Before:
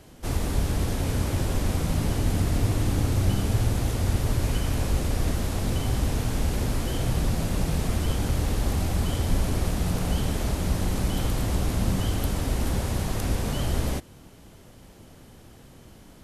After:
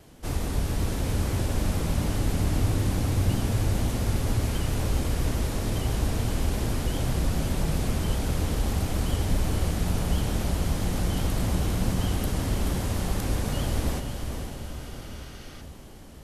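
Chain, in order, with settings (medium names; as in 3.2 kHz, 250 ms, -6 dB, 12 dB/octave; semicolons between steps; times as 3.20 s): vibrato 7.5 Hz 70 cents; echo that smears into a reverb 490 ms, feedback 61%, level -6.5 dB; spectral replace 14.65–15.59 s, 1.1–6.6 kHz before; trim -2 dB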